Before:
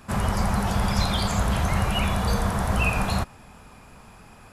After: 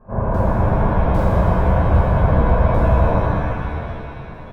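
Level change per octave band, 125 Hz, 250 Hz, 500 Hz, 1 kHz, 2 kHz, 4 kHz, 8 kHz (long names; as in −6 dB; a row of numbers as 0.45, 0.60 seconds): +8.5 dB, +6.0 dB, +12.0 dB, +6.0 dB, +0.5 dB, below −10 dB, below −15 dB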